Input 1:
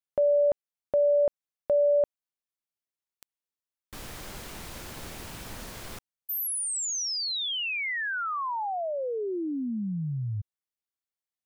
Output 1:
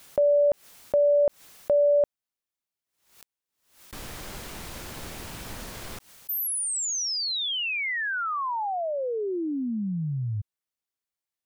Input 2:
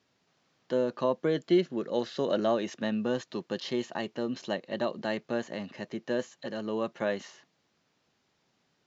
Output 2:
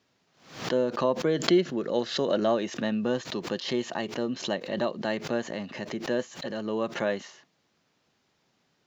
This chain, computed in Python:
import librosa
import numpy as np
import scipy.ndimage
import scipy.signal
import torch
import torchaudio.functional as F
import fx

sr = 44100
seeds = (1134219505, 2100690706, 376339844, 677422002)

y = fx.pre_swell(x, sr, db_per_s=110.0)
y = y * 10.0 ** (2.0 / 20.0)